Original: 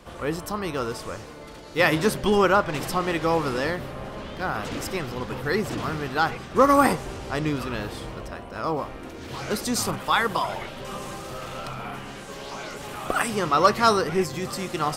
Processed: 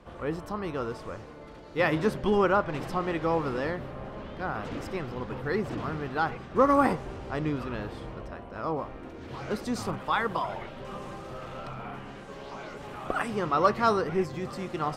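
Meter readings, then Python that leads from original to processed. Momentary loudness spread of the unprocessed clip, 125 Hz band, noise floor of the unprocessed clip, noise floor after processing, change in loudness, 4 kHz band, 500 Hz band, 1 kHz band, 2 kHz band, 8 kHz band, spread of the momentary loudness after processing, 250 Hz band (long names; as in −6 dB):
16 LU, −3.5 dB, −40 dBFS, −44 dBFS, −4.5 dB, −11.0 dB, −4.0 dB, −5.0 dB, −6.5 dB, −16.0 dB, 16 LU, −3.5 dB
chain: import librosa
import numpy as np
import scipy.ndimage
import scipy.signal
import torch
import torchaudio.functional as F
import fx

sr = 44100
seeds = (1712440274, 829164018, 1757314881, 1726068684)

y = fx.lowpass(x, sr, hz=1700.0, slope=6)
y = y * 10.0 ** (-3.5 / 20.0)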